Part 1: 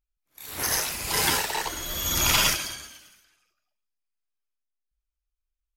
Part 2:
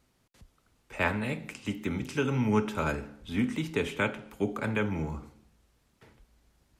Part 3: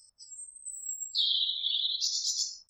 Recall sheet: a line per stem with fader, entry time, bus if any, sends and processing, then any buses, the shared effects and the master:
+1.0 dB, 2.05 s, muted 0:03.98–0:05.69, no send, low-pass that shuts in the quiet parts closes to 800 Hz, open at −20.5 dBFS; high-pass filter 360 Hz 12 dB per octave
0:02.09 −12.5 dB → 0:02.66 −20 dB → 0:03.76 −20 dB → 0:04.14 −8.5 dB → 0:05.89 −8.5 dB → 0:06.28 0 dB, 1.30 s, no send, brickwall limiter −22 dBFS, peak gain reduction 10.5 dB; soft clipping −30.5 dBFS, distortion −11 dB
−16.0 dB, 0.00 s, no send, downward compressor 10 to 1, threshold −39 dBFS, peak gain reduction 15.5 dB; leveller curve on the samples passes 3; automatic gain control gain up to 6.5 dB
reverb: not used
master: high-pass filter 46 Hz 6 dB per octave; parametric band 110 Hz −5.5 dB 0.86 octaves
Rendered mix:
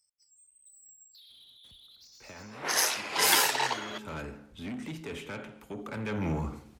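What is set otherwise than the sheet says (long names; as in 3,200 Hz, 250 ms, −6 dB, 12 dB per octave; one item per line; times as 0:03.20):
stem 2 −12.5 dB → −6.5 dB
stem 3 −16.0 dB → −27.5 dB
master: missing parametric band 110 Hz −5.5 dB 0.86 octaves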